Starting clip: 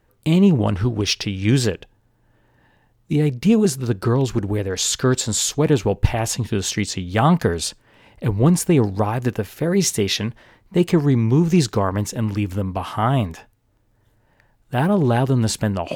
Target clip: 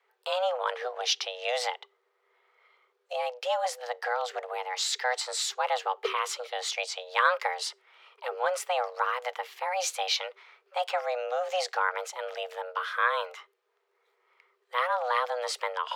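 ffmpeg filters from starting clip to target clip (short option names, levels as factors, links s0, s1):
-filter_complex "[0:a]acrossover=split=580 4700:gain=0.224 1 0.224[s0][s1][s2];[s0][s1][s2]amix=inputs=3:normalize=0,afreqshift=370,volume=0.708"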